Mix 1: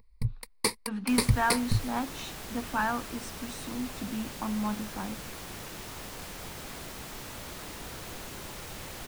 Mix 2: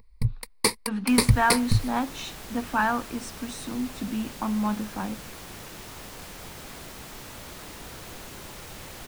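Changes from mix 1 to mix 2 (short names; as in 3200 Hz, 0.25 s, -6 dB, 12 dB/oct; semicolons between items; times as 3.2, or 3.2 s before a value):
speech +5.0 dB; first sound +5.0 dB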